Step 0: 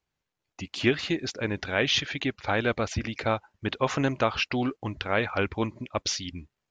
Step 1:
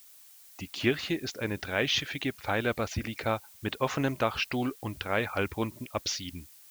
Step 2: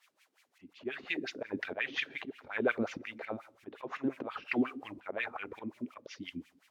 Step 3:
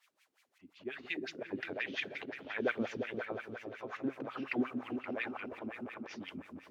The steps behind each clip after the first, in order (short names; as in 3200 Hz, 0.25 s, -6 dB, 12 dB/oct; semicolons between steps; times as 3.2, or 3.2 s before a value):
added noise blue -51 dBFS; gain -3 dB
auto swell 0.15 s; two-slope reverb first 0.55 s, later 2.7 s, from -21 dB, DRR 12.5 dB; wah 5.6 Hz 240–2500 Hz, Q 3.7; gain +7.5 dB
repeats that get brighter 0.175 s, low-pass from 200 Hz, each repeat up 2 oct, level -3 dB; gain -3.5 dB